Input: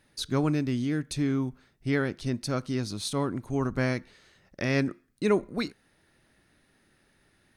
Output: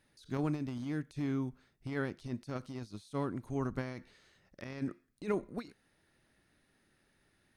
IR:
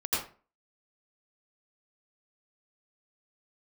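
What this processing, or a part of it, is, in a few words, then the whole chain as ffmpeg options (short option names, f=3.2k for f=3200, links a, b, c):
de-esser from a sidechain: -filter_complex "[0:a]asplit=2[a][b];[b]highpass=f=4.4k:w=0.5412,highpass=f=4.4k:w=1.3066,apad=whole_len=333826[c];[a][c]sidechaincompress=threshold=-53dB:ratio=8:attack=1.1:release=24,volume=-6.5dB"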